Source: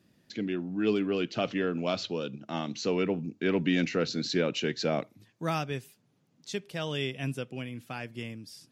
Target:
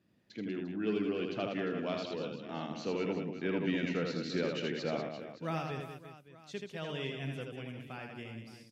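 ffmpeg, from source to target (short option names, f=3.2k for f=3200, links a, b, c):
-filter_complex "[0:a]bass=f=250:g=-1,treble=f=4k:g=-8,asplit=2[a][b];[b]aecho=0:1:80|192|348.8|568.3|875.6:0.631|0.398|0.251|0.158|0.1[c];[a][c]amix=inputs=2:normalize=0,volume=-7dB"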